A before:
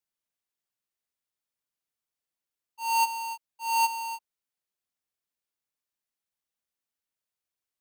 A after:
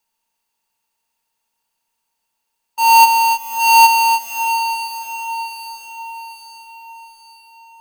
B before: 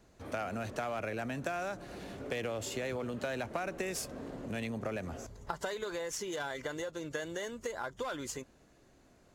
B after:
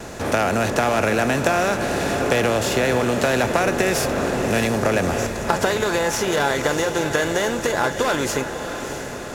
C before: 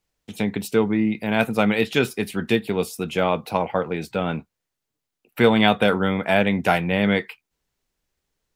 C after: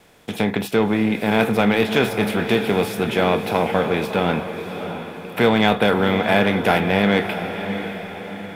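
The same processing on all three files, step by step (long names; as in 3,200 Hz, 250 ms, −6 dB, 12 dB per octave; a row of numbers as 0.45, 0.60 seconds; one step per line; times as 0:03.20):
compressor on every frequency bin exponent 0.6
noise gate with hold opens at −47 dBFS
dynamic equaliser 7,700 Hz, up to −5 dB, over −48 dBFS, Q 1.5
in parallel at −3.5 dB: soft clipping −13 dBFS
on the sum: tuned comb filter 840 Hz, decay 0.26 s, mix 60%
on a send: feedback delay with all-pass diffusion 647 ms, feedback 50%, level −9 dB
on the sum: normalise the peak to −2 dBFS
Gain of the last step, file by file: +18.5, +17.0, +3.0 decibels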